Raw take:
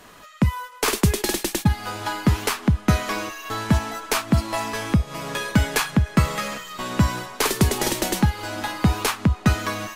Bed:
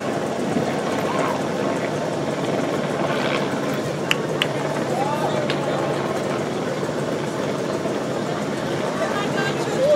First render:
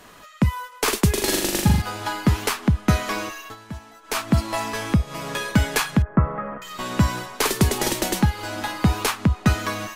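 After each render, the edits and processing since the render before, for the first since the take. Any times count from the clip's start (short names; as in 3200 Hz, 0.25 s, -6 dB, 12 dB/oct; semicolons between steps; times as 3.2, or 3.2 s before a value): 1.11–1.82 flutter echo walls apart 7.1 m, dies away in 0.79 s; 3.38–4.21 dip -16 dB, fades 0.18 s; 6.02–6.62 inverse Chebyshev low-pass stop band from 4800 Hz, stop band 60 dB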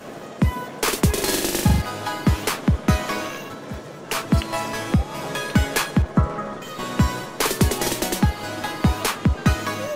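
add bed -13 dB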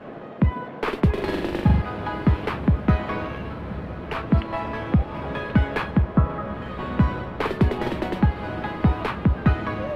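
air absorption 470 m; diffused feedback echo 1.012 s, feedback 56%, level -13.5 dB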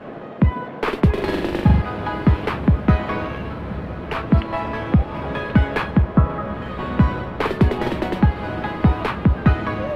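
gain +3.5 dB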